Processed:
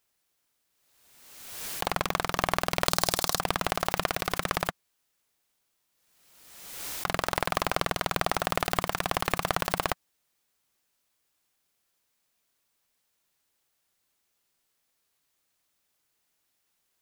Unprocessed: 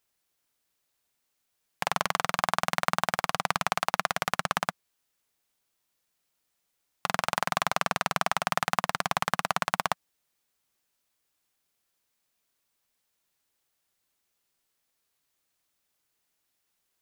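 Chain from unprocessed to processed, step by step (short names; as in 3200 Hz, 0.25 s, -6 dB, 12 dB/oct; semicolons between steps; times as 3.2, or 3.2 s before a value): one-sided fold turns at -16 dBFS; 2.88–3.4 resonant high shelf 3400 Hz +9.5 dB, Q 1.5; backwards sustainer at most 42 dB/s; gain +2 dB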